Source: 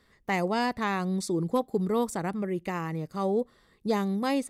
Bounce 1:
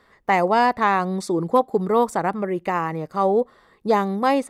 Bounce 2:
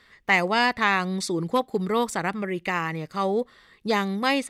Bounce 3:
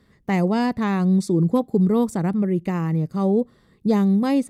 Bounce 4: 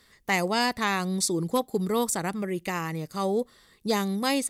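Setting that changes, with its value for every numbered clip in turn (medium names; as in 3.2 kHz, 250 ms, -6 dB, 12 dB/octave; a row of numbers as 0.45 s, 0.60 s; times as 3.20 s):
peaking EQ, frequency: 900 Hz, 2.4 kHz, 150 Hz, 15 kHz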